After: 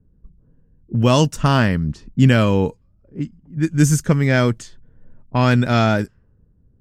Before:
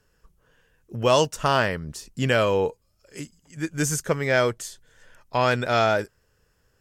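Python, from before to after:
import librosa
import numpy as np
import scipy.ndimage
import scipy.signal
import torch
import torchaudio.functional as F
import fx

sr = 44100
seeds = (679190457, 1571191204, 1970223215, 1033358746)

y = fx.low_shelf_res(x, sr, hz=340.0, db=9.5, q=1.5)
y = fx.env_lowpass(y, sr, base_hz=420.0, full_db=-17.0)
y = y * 10.0 ** (2.5 / 20.0)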